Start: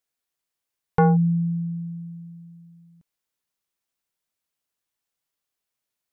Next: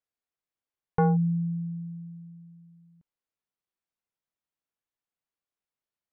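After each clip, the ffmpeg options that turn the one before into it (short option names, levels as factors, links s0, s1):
-af "lowpass=f=1800:p=1,volume=0.562"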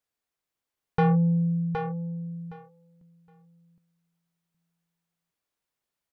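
-filter_complex "[0:a]asoftclip=type=tanh:threshold=0.0708,asplit=2[s0][s1];[s1]aecho=0:1:766|1532|2298:0.501|0.0802|0.0128[s2];[s0][s2]amix=inputs=2:normalize=0,volume=1.88"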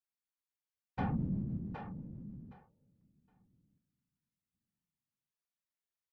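-af "equalizer=f=490:w=1.3:g=-8.5,afftfilt=real='hypot(re,im)*cos(2*PI*random(0))':imag='hypot(re,im)*sin(2*PI*random(1))':win_size=512:overlap=0.75,volume=0.501"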